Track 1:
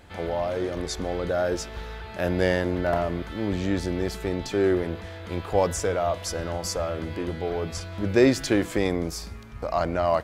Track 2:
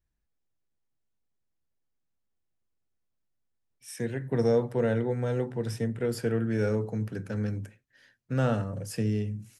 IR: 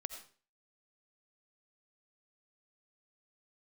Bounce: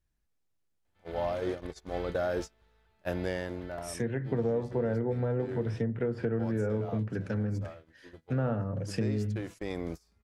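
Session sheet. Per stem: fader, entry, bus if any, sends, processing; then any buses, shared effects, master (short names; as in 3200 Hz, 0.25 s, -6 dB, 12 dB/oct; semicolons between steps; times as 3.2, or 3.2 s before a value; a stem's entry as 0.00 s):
-2.0 dB, 0.85 s, no send, gate -27 dBFS, range -29 dB; auto duck -14 dB, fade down 0.95 s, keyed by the second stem
+2.0 dB, 0.00 s, no send, treble ducked by the level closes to 1500 Hz, closed at -26 dBFS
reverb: off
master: compressor 4:1, threshold -27 dBFS, peak gain reduction 8.5 dB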